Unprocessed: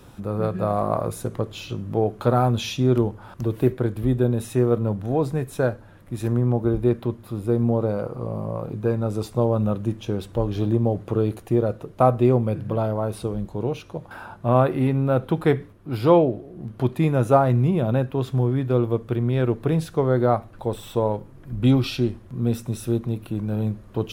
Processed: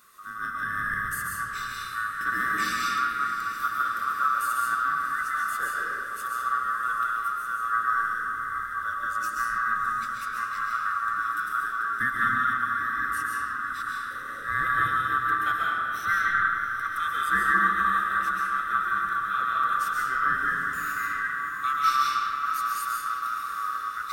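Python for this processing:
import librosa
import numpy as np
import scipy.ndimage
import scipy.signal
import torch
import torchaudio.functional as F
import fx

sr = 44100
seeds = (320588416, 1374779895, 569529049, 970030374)

y = fx.band_swap(x, sr, width_hz=1000)
y = fx.vibrato(y, sr, rate_hz=3.0, depth_cents=10.0)
y = F.preemphasis(torch.from_numpy(y), 0.8).numpy()
y = fx.echo_diffused(y, sr, ms=697, feedback_pct=71, wet_db=-12)
y = fx.rev_freeverb(y, sr, rt60_s=2.5, hf_ratio=0.55, predelay_ms=95, drr_db=-4.5)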